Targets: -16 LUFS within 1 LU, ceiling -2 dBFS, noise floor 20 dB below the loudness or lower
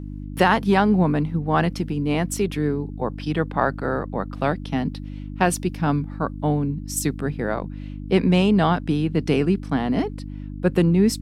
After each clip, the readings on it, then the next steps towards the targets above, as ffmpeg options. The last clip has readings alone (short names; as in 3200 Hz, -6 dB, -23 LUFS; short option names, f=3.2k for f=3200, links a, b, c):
hum 50 Hz; harmonics up to 300 Hz; hum level -30 dBFS; loudness -22.5 LUFS; peak -3.5 dBFS; loudness target -16.0 LUFS
-> -af "bandreject=f=50:t=h:w=4,bandreject=f=100:t=h:w=4,bandreject=f=150:t=h:w=4,bandreject=f=200:t=h:w=4,bandreject=f=250:t=h:w=4,bandreject=f=300:t=h:w=4"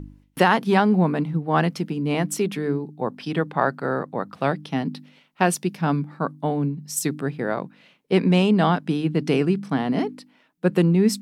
hum none; loudness -23.0 LUFS; peak -4.0 dBFS; loudness target -16.0 LUFS
-> -af "volume=7dB,alimiter=limit=-2dB:level=0:latency=1"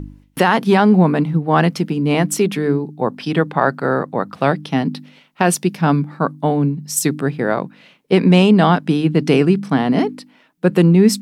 loudness -16.5 LUFS; peak -2.0 dBFS; noise floor -53 dBFS